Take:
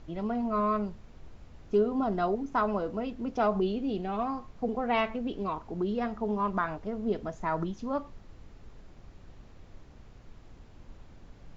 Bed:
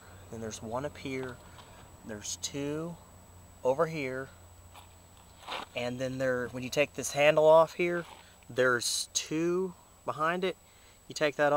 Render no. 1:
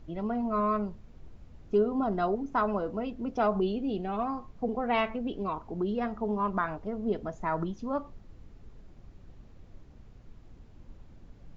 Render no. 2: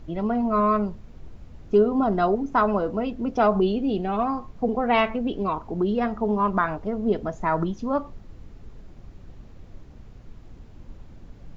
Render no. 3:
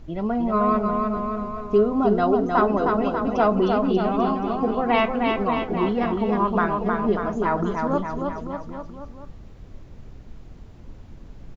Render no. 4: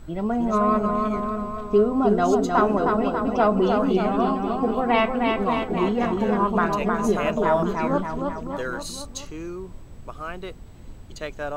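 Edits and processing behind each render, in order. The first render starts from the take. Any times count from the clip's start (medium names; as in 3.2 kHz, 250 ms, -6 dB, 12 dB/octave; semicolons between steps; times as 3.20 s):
noise reduction 6 dB, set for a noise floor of -53 dBFS
trim +7 dB
bouncing-ball echo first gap 310 ms, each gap 0.9×, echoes 5
add bed -4.5 dB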